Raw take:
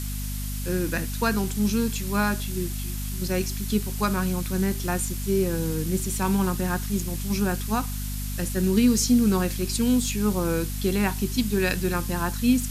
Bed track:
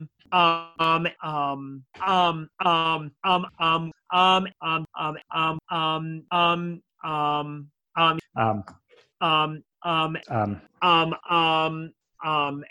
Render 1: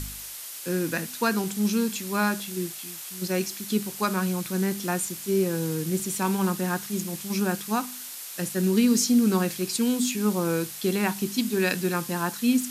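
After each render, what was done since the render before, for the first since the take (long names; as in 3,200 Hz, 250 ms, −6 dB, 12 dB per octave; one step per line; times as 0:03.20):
hum removal 50 Hz, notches 5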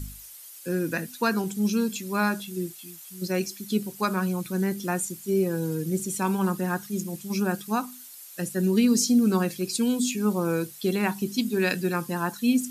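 broadband denoise 12 dB, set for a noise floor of −39 dBFS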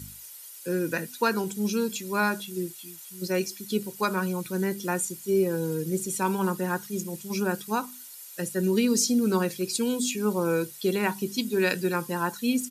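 high-pass filter 120 Hz
comb filter 2.1 ms, depth 34%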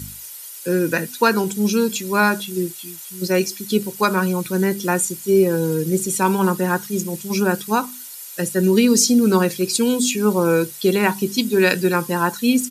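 level +8.5 dB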